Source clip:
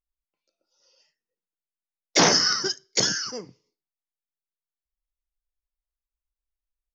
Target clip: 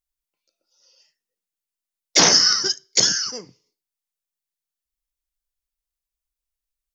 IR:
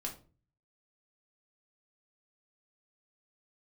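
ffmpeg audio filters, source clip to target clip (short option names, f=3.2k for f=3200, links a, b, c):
-af "highshelf=f=2.8k:g=9,volume=-1dB"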